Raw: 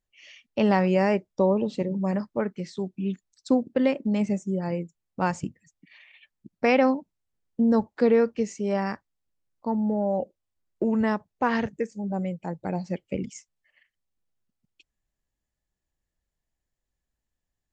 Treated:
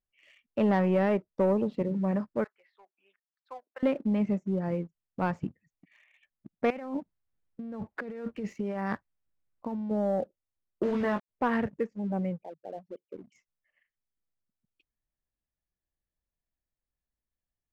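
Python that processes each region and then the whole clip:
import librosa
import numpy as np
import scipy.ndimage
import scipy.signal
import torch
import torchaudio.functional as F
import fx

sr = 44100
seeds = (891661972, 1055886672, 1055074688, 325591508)

y = fx.chain(x, sr, fx.highpass(hz=850.0, slope=24),
    fx.air_absorb(metres=380.0), at=(2.44, 3.83))
y = fx.chain(y, sr, fx.peak_eq(hz=380.0, db=-3.5, octaves=2.3),
    fx.over_compress(threshold_db=-33.0, ratio=-1.0), at=(6.7, 9.91))
y = fx.chain(y, sr, fx.low_shelf(hz=140.0, db=-7.5),
    fx.quant_dither(seeds[0], bits=6, dither='none'),
    fx.doubler(ms=20.0, db=-6.0), at=(10.83, 11.29))
y = fx.chain(y, sr, fx.envelope_sharpen(power=3.0),
    fx.highpass(hz=1200.0, slope=6),
    fx.air_absorb(metres=490.0), at=(12.42, 13.32))
y = scipy.signal.sosfilt(scipy.signal.butter(2, 2100.0, 'lowpass', fs=sr, output='sos'), y)
y = fx.peak_eq(y, sr, hz=870.0, db=-3.5, octaves=0.21)
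y = fx.leveller(y, sr, passes=1)
y = y * 10.0 ** (-5.5 / 20.0)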